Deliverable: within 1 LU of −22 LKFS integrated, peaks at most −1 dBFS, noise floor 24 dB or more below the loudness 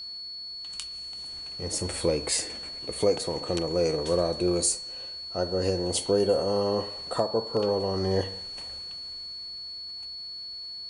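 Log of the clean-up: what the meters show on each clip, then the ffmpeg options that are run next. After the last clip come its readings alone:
interfering tone 4,400 Hz; level of the tone −36 dBFS; integrated loudness −29.0 LKFS; sample peak −10.5 dBFS; target loudness −22.0 LKFS
→ -af "bandreject=frequency=4400:width=30"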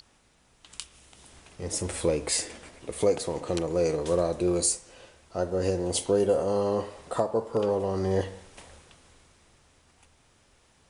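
interfering tone none found; integrated loudness −27.5 LKFS; sample peak −10.5 dBFS; target loudness −22.0 LKFS
→ -af "volume=5.5dB"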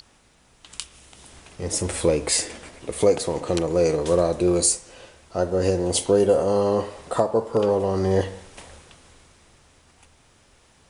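integrated loudness −22.0 LKFS; sample peak −5.0 dBFS; background noise floor −58 dBFS

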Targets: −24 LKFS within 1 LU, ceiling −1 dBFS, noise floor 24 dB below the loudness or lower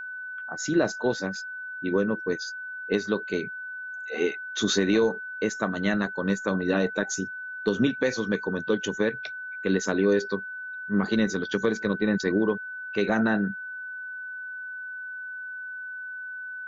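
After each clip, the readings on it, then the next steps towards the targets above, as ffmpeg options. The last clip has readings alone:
interfering tone 1,500 Hz; level of the tone −34 dBFS; integrated loudness −28.0 LKFS; sample peak −10.5 dBFS; target loudness −24.0 LKFS
→ -af "bandreject=frequency=1500:width=30"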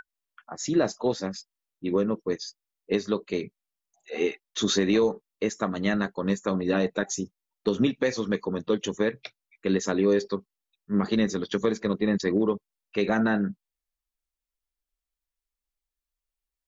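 interfering tone none found; integrated loudness −27.0 LKFS; sample peak −11.0 dBFS; target loudness −24.0 LKFS
→ -af "volume=3dB"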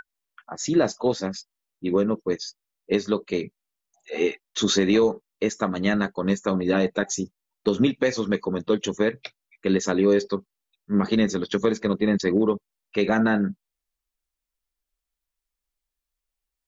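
integrated loudness −24.0 LKFS; sample peak −8.0 dBFS; background noise floor −86 dBFS

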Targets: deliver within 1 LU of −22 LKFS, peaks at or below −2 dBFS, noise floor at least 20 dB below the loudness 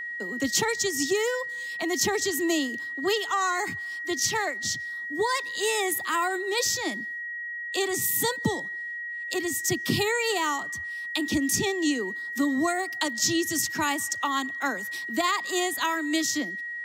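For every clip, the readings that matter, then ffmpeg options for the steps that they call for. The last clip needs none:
interfering tone 1,900 Hz; level of the tone −32 dBFS; integrated loudness −26.5 LKFS; sample peak −11.0 dBFS; target loudness −22.0 LKFS
→ -af "bandreject=frequency=1900:width=30"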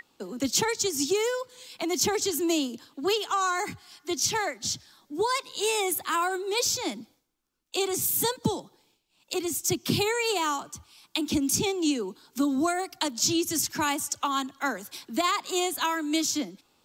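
interfering tone none found; integrated loudness −27.5 LKFS; sample peak −11.0 dBFS; target loudness −22.0 LKFS
→ -af "volume=5.5dB"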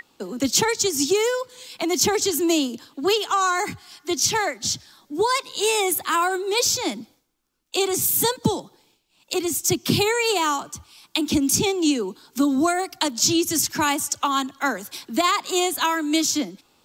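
integrated loudness −22.0 LKFS; sample peak −5.5 dBFS; background noise floor −65 dBFS

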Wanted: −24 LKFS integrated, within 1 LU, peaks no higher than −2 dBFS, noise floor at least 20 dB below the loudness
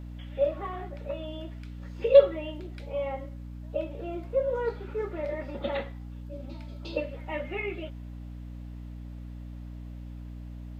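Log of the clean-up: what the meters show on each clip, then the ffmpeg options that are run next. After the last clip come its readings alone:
mains hum 60 Hz; hum harmonics up to 300 Hz; level of the hum −38 dBFS; integrated loudness −30.0 LKFS; sample peak −6.0 dBFS; target loudness −24.0 LKFS
→ -af "bandreject=frequency=60:width_type=h:width=4,bandreject=frequency=120:width_type=h:width=4,bandreject=frequency=180:width_type=h:width=4,bandreject=frequency=240:width_type=h:width=4,bandreject=frequency=300:width_type=h:width=4"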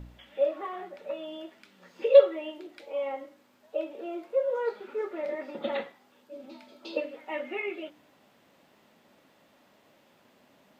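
mains hum none found; integrated loudness −29.5 LKFS; sample peak −6.0 dBFS; target loudness −24.0 LKFS
→ -af "volume=5.5dB,alimiter=limit=-2dB:level=0:latency=1"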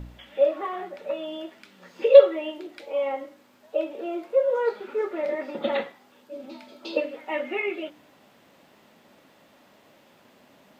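integrated loudness −24.5 LKFS; sample peak −2.0 dBFS; background noise floor −58 dBFS

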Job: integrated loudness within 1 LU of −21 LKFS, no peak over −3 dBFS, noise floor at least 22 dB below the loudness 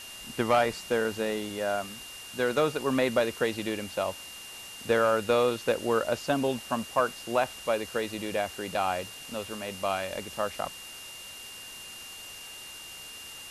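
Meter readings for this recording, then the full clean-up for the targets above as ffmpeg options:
interfering tone 2,800 Hz; level of the tone −44 dBFS; background noise floor −44 dBFS; target noise floor −51 dBFS; integrated loudness −29.0 LKFS; sample peak −13.0 dBFS; target loudness −21.0 LKFS
→ -af "bandreject=frequency=2800:width=30"
-af "afftdn=noise_reduction=7:noise_floor=-44"
-af "volume=8dB"

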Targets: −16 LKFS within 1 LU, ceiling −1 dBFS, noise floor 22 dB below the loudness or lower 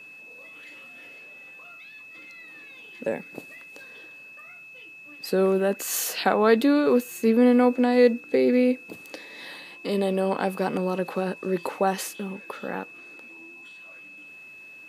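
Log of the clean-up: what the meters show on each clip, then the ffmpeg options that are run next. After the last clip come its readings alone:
interfering tone 2,600 Hz; level of the tone −43 dBFS; integrated loudness −23.5 LKFS; sample peak −6.0 dBFS; target loudness −16.0 LKFS
→ -af "bandreject=frequency=2600:width=30"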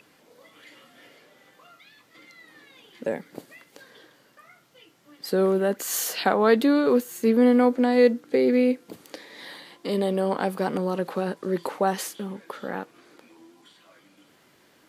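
interfering tone none found; integrated loudness −23.5 LKFS; sample peak −6.5 dBFS; target loudness −16.0 LKFS
→ -af "volume=7.5dB,alimiter=limit=-1dB:level=0:latency=1"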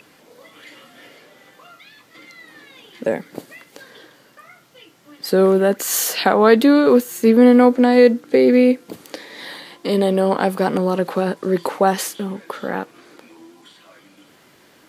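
integrated loudness −16.5 LKFS; sample peak −1.0 dBFS; background noise floor −52 dBFS

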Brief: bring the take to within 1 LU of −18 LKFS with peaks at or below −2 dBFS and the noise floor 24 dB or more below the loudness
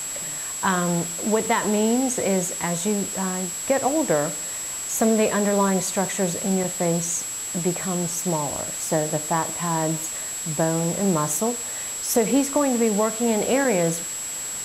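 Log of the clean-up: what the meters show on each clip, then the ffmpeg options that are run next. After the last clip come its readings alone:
interfering tone 7,700 Hz; level of the tone −29 dBFS; background noise floor −31 dBFS; target noise floor −47 dBFS; integrated loudness −23.0 LKFS; sample peak −8.0 dBFS; target loudness −18.0 LKFS
→ -af "bandreject=frequency=7700:width=30"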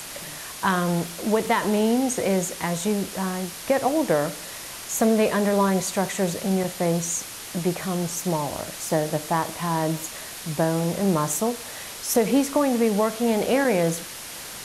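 interfering tone none found; background noise floor −37 dBFS; target noise floor −48 dBFS
→ -af "afftdn=noise_reduction=11:noise_floor=-37"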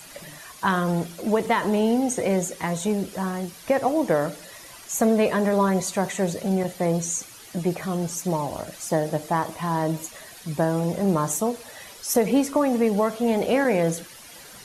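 background noise floor −45 dBFS; target noise floor −48 dBFS
→ -af "afftdn=noise_reduction=6:noise_floor=-45"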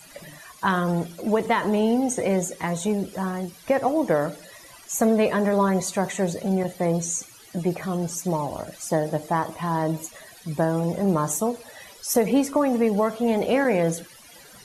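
background noise floor −48 dBFS; integrated loudness −24.0 LKFS; sample peak −9.0 dBFS; target loudness −18.0 LKFS
→ -af "volume=6dB"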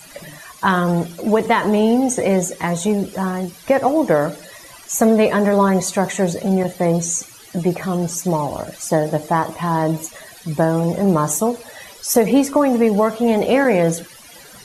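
integrated loudness −18.0 LKFS; sample peak −3.0 dBFS; background noise floor −42 dBFS

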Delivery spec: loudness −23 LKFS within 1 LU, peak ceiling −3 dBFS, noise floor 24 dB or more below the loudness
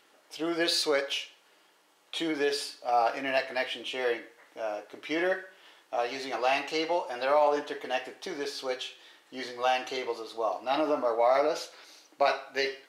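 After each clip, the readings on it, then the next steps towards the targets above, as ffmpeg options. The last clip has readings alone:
integrated loudness −30.0 LKFS; sample peak −12.0 dBFS; target loudness −23.0 LKFS
→ -af "volume=7dB"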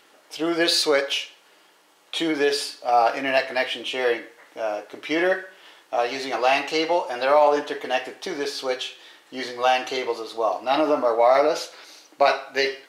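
integrated loudness −23.0 LKFS; sample peak −5.0 dBFS; background noise floor −57 dBFS

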